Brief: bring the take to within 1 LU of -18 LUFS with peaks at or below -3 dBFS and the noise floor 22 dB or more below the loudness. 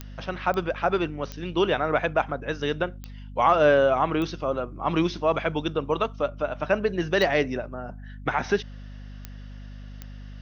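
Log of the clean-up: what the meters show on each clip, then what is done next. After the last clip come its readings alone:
clicks 8; hum 50 Hz; harmonics up to 250 Hz; hum level -37 dBFS; loudness -25.5 LUFS; peak -7.5 dBFS; loudness target -18.0 LUFS
-> de-click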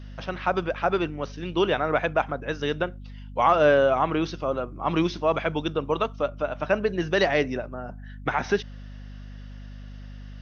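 clicks 0; hum 50 Hz; harmonics up to 250 Hz; hum level -37 dBFS
-> notches 50/100/150/200/250 Hz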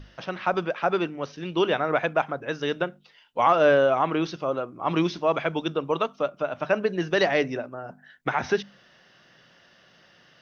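hum none; loudness -25.5 LUFS; peak -8.0 dBFS; loudness target -18.0 LUFS
-> gain +7.5 dB; limiter -3 dBFS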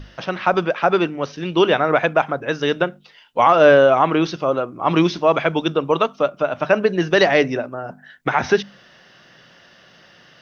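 loudness -18.0 LUFS; peak -3.0 dBFS; noise floor -50 dBFS

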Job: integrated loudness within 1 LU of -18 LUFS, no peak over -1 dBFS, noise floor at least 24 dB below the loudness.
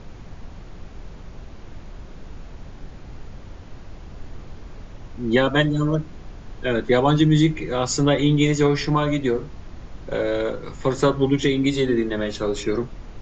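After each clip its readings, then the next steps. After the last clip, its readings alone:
noise floor -40 dBFS; noise floor target -45 dBFS; loudness -21.0 LUFS; peak -5.0 dBFS; loudness target -18.0 LUFS
-> noise print and reduce 6 dB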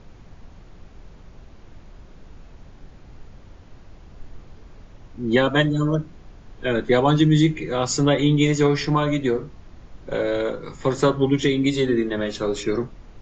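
noise floor -46 dBFS; loudness -21.0 LUFS; peak -5.0 dBFS; loudness target -18.0 LUFS
-> gain +3 dB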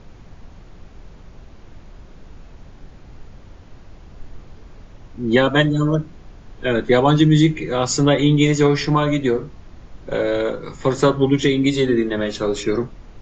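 loudness -18.0 LUFS; peak -2.0 dBFS; noise floor -43 dBFS

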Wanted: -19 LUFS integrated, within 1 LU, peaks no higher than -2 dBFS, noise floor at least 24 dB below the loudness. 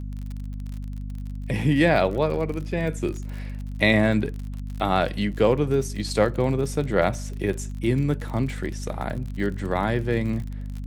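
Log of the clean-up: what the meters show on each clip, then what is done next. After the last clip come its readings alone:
ticks 46/s; hum 50 Hz; harmonics up to 250 Hz; hum level -29 dBFS; loudness -24.5 LUFS; peak -5.5 dBFS; loudness target -19.0 LUFS
-> de-click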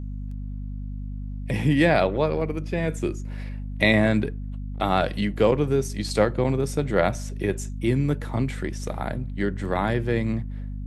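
ticks 0.28/s; hum 50 Hz; harmonics up to 250 Hz; hum level -30 dBFS
-> de-hum 50 Hz, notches 5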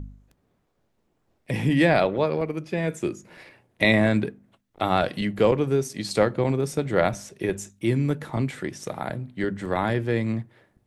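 hum none; loudness -25.0 LUFS; peak -6.5 dBFS; loudness target -19.0 LUFS
-> gain +6 dB; limiter -2 dBFS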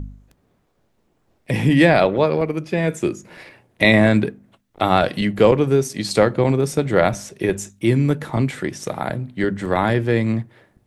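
loudness -19.0 LUFS; peak -2.0 dBFS; noise floor -65 dBFS

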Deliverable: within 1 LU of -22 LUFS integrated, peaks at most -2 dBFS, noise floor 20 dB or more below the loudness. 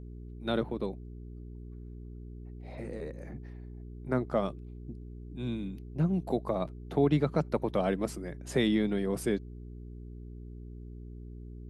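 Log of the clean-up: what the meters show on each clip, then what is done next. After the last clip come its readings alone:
hum 60 Hz; harmonics up to 420 Hz; hum level -42 dBFS; loudness -32.0 LUFS; peak -14.5 dBFS; loudness target -22.0 LUFS
-> de-hum 60 Hz, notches 7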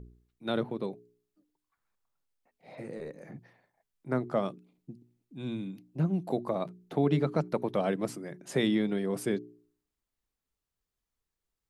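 hum none; loudness -32.0 LUFS; peak -15.0 dBFS; loudness target -22.0 LUFS
-> gain +10 dB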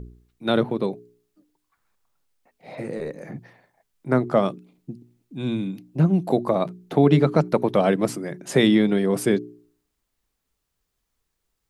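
loudness -22.0 LUFS; peak -5.0 dBFS; noise floor -78 dBFS

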